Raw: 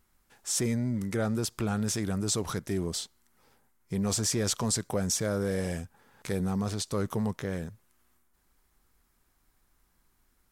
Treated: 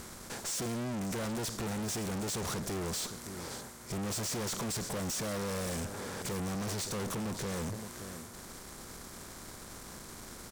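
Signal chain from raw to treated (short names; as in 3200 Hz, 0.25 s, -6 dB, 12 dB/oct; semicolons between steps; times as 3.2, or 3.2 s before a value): per-bin compression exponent 0.6; echo 0.568 s -22 dB; tube stage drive 42 dB, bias 0.6; gain +7.5 dB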